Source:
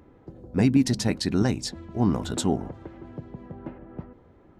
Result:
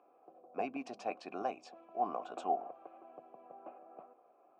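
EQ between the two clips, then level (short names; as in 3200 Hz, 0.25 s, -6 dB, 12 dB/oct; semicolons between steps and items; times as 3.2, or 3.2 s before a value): vowel filter a; BPF 330–6900 Hz; bell 3900 Hz -9 dB 0.77 oct; +4.5 dB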